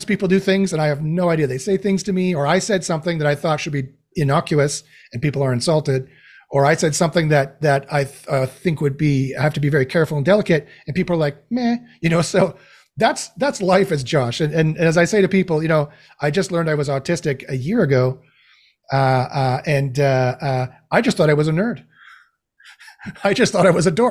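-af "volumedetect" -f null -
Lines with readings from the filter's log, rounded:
mean_volume: -18.6 dB
max_volume: -1.5 dB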